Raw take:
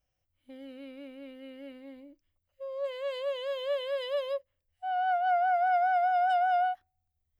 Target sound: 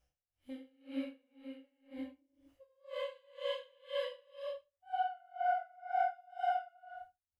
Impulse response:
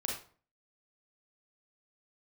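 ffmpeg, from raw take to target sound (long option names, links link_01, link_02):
-filter_complex "[0:a]asplit=3[link_01][link_02][link_03];[link_01]afade=type=out:start_time=1.13:duration=0.02[link_04];[link_02]agate=range=-13dB:threshold=-42dB:ratio=16:detection=peak,afade=type=in:start_time=1.13:duration=0.02,afade=type=out:start_time=1.9:duration=0.02[link_05];[link_03]afade=type=in:start_time=1.9:duration=0.02[link_06];[link_04][link_05][link_06]amix=inputs=3:normalize=0,acompressor=threshold=-48dB:ratio=2.5,flanger=delay=15.5:depth=6.4:speed=2,aecho=1:1:30|67.5|114.4|173|246.2:0.631|0.398|0.251|0.158|0.1[link_07];[1:a]atrim=start_sample=2205,afade=type=out:start_time=0.16:duration=0.01,atrim=end_sample=7497,asetrate=24696,aresample=44100[link_08];[link_07][link_08]afir=irnorm=-1:irlink=0,aeval=exprs='val(0)*pow(10,-32*(0.5-0.5*cos(2*PI*2*n/s))/20)':channel_layout=same,volume=4.5dB"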